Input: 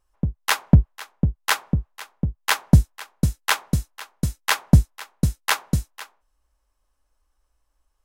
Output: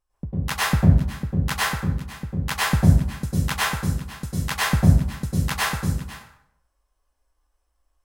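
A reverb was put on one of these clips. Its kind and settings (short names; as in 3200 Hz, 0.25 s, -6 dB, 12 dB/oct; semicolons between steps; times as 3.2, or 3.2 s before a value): plate-style reverb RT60 0.71 s, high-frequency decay 0.7×, pre-delay 90 ms, DRR -8.5 dB; gain -9 dB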